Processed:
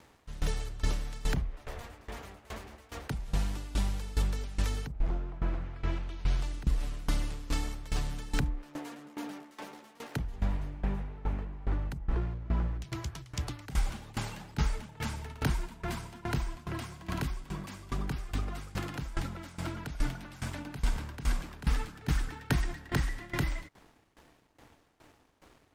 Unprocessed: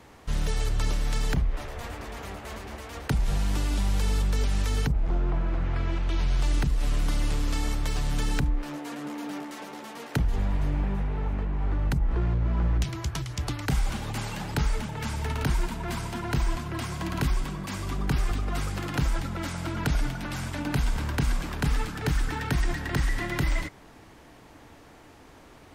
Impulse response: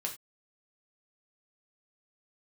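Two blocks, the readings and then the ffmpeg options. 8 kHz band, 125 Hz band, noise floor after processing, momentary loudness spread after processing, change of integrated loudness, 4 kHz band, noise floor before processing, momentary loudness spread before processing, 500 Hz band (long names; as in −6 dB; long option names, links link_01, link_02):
−6.5 dB, −6.5 dB, −64 dBFS, 10 LU, −6.5 dB, −6.5 dB, −51 dBFS, 8 LU, −6.5 dB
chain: -af "aeval=exprs='sgn(val(0))*max(abs(val(0))-0.00168,0)':channel_layout=same,aeval=exprs='val(0)*pow(10,-19*if(lt(mod(2.4*n/s,1),2*abs(2.4)/1000),1-mod(2.4*n/s,1)/(2*abs(2.4)/1000),(mod(2.4*n/s,1)-2*abs(2.4)/1000)/(1-2*abs(2.4)/1000))/20)':channel_layout=same"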